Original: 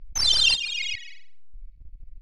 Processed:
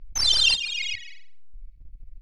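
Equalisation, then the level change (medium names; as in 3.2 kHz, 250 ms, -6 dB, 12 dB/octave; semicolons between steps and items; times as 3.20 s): hum notches 60/120/180 Hz; 0.0 dB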